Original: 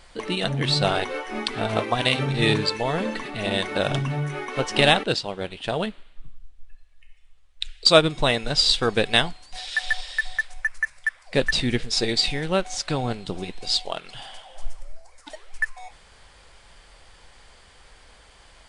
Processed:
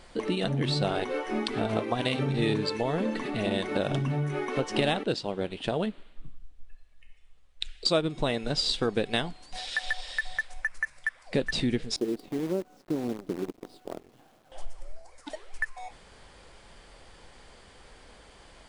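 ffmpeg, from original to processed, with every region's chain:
ffmpeg -i in.wav -filter_complex "[0:a]asettb=1/sr,asplit=3[link_01][link_02][link_03];[link_01]atrim=end=11.964[link_04];[link_02]atrim=start=11.96:end=14.52,asetpts=PTS-STARTPTS,afade=type=in:duration=0.004:curve=qsin,afade=type=out:start_time=2.556:duration=0.004:curve=qsin,bandpass=frequency=320:width_type=q:width=2,acrusher=bits=7:dc=4:mix=0:aa=0.000001[link_05];[link_03]atrim=start=14.516[link_06];[link_04][link_05]acrossfade=duration=0.004:curve1=hsin:curve2=qsin[link_07];[link_07][link_06]acrossfade=duration=0.004:curve1=qsin:curve2=hsin,equalizer=frequency=280:width_type=o:width=2.4:gain=8.5,acompressor=threshold=-24dB:ratio=2.5,volume=-3dB" out.wav

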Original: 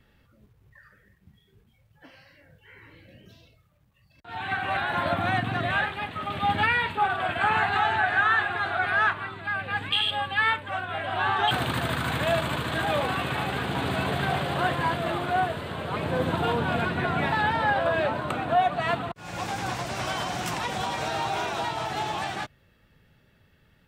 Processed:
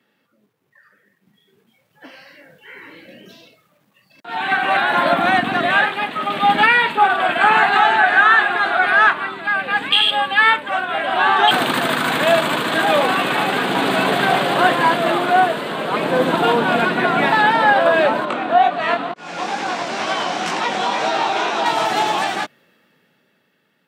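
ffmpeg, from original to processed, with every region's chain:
ffmpeg -i in.wav -filter_complex "[0:a]asettb=1/sr,asplit=3[link_01][link_02][link_03];[link_01]atrim=end=18.254[link_04];[link_02]atrim=start=18.25:end=21.66,asetpts=PTS-STARTPTS,afade=type=in:duration=0.004:curve=qsin,afade=type=out:start_time=3.406:duration=0.004:curve=qsin,flanger=delay=18:depth=8:speed=2.1,highpass=150,lowpass=6000[link_05];[link_03]atrim=start=21.656[link_06];[link_04][link_05]acrossfade=duration=0.004:curve1=hsin:curve2=qsin[link_07];[link_07][link_06]acrossfade=duration=0.004:curve1=qsin:curve2=hsin,highpass=frequency=200:width=0.5412,highpass=frequency=200:width=1.3066,dynaudnorm=framelen=280:gausssize=13:maxgain=13.5dB" out.wav

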